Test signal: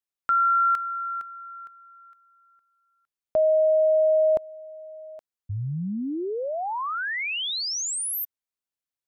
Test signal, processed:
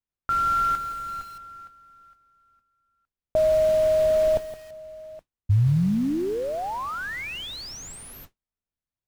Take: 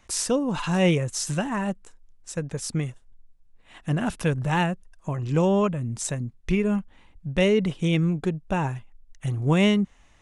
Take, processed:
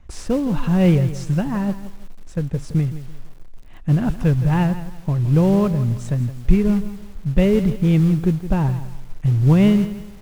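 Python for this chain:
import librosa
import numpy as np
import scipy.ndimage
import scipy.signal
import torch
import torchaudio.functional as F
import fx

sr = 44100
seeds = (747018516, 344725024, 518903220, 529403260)

y = fx.mod_noise(x, sr, seeds[0], snr_db=13)
y = fx.riaa(y, sr, side='playback')
y = fx.echo_crushed(y, sr, ms=167, feedback_pct=35, bits=6, wet_db=-13)
y = F.gain(torch.from_numpy(y), -1.5).numpy()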